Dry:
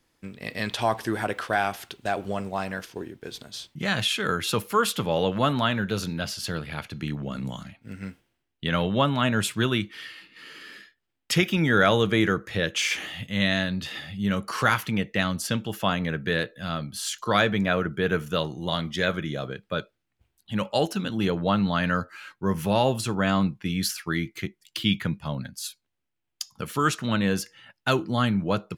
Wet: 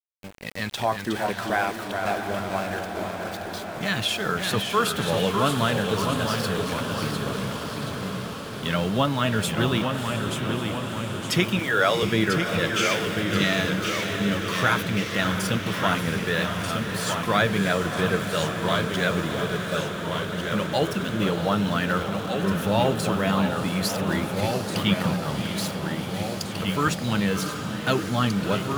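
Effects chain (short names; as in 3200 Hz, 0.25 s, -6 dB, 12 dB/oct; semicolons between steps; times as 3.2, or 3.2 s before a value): bin magnitudes rounded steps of 15 dB; 11.59–12.03 HPF 380 Hz 24 dB/oct; sample gate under -36 dBFS; diffused feedback echo 0.662 s, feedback 75%, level -8 dB; echoes that change speed 0.321 s, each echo -1 st, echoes 2, each echo -6 dB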